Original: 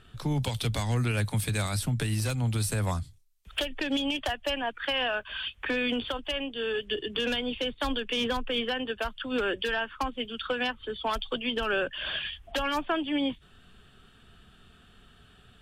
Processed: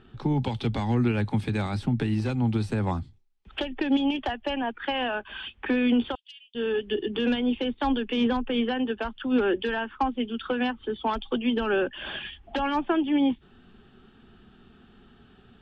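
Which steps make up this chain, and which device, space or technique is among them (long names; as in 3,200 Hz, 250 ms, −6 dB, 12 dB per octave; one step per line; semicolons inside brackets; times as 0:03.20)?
inside a cardboard box (low-pass filter 3,300 Hz 12 dB per octave; hollow resonant body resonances 240/350/810 Hz, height 11 dB, ringing for 35 ms)
0:06.15–0:06.55: inverse Chebyshev high-pass filter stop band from 850 Hz, stop band 70 dB
level −1.5 dB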